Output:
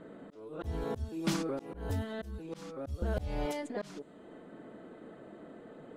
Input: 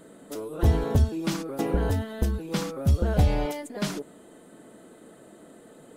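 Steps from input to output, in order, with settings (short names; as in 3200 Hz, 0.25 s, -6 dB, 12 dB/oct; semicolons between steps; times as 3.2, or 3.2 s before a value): low-pass opened by the level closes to 2300 Hz, open at -21.5 dBFS; auto swell 0.508 s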